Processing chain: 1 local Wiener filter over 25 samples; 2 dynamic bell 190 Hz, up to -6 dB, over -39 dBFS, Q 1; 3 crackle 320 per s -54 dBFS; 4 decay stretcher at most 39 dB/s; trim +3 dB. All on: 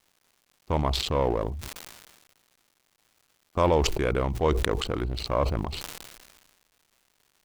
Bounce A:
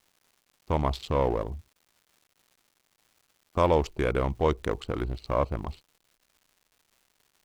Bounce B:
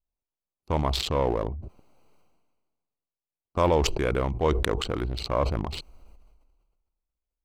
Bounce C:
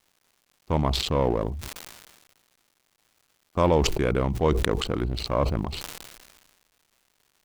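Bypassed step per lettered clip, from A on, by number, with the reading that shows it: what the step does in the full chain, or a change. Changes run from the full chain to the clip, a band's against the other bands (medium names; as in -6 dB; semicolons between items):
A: 4, crest factor change -3.0 dB; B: 3, momentary loudness spread change -5 LU; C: 2, 250 Hz band +2.5 dB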